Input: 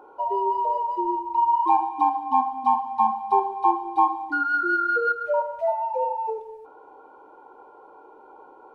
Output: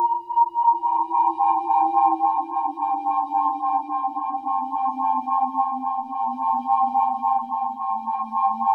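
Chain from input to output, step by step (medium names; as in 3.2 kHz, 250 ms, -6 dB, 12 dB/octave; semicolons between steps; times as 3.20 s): crackle 40 per s -53 dBFS; Paulstretch 5.2×, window 0.50 s, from 1.38 s; lamp-driven phase shifter 3.6 Hz; trim +2 dB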